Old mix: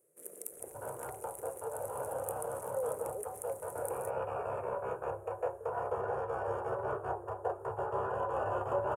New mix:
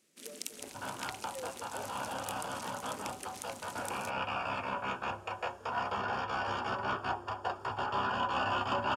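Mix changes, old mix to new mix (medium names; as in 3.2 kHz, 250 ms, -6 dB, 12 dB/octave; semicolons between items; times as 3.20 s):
speech: entry -1.40 s; master: remove FFT filter 150 Hz 0 dB, 230 Hz -18 dB, 460 Hz +11 dB, 780 Hz -2 dB, 1.9 kHz -12 dB, 3.3 kHz -27 dB, 4.8 kHz -29 dB, 9.7 kHz +4 dB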